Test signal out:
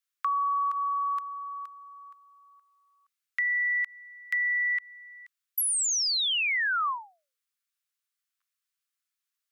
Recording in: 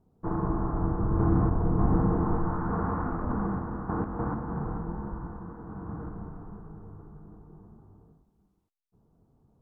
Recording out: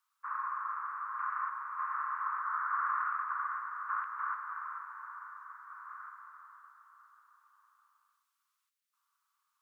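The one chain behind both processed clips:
Butterworth high-pass 1,100 Hz 72 dB per octave
brickwall limiter −26.5 dBFS
downward compressor, threshold −33 dBFS
level +7.5 dB

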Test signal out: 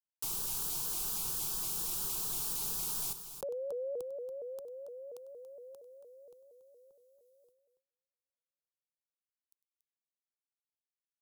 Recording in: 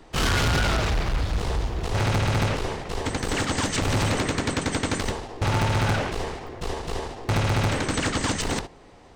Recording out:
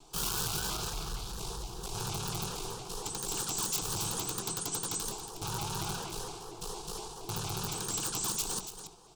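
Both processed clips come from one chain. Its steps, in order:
noise gate −56 dBFS, range −33 dB
first-order pre-emphasis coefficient 0.8
in parallel at +2.5 dB: downward compressor 8 to 1, threshold −47 dBFS
on the sum: wrap-around overflow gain 22.5 dB
phaser with its sweep stopped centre 390 Hz, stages 8
on a send: multi-tap delay 98/281 ms −16/−10.5 dB
on the sum: pitch modulation by a square or saw wave saw up 4.3 Hz, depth 160 cents

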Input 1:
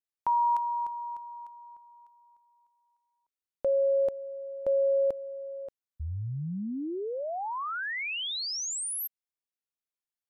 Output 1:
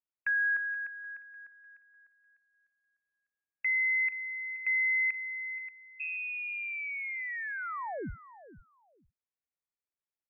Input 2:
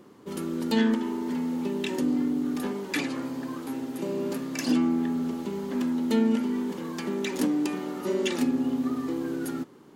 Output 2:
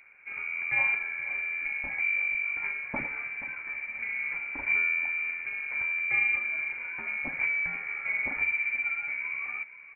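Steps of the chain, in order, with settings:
repeating echo 477 ms, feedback 18%, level −16 dB
voice inversion scrambler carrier 2,600 Hz
level −3.5 dB

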